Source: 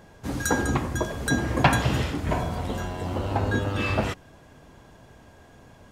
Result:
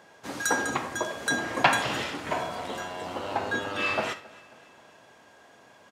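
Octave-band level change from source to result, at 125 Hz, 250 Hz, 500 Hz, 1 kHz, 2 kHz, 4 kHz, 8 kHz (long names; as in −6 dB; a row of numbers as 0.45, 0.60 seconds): −17.0, −8.0, −2.5, 0.0, +1.5, +1.5, 0.0 decibels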